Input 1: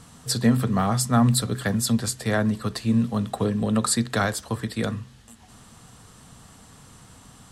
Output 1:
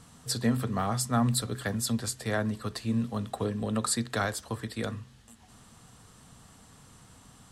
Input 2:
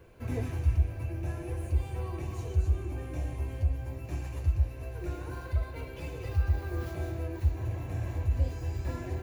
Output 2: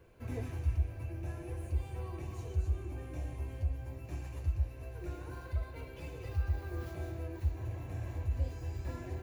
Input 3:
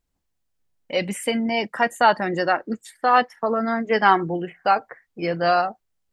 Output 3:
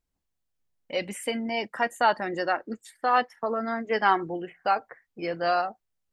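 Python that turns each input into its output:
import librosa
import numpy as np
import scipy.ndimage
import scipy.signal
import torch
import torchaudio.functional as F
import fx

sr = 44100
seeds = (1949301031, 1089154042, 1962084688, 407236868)

y = fx.dynamic_eq(x, sr, hz=170.0, q=2.2, threshold_db=-40.0, ratio=4.0, max_db=-6)
y = y * 10.0 ** (-5.5 / 20.0)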